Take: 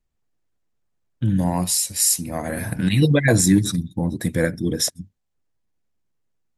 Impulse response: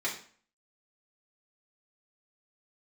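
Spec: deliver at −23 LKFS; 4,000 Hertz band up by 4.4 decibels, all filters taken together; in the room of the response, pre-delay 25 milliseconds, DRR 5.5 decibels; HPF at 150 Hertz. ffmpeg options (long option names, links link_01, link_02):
-filter_complex "[0:a]highpass=150,equalizer=frequency=4000:width_type=o:gain=6,asplit=2[link_01][link_02];[1:a]atrim=start_sample=2205,adelay=25[link_03];[link_02][link_03]afir=irnorm=-1:irlink=0,volume=-12dB[link_04];[link_01][link_04]amix=inputs=2:normalize=0,volume=-3.5dB"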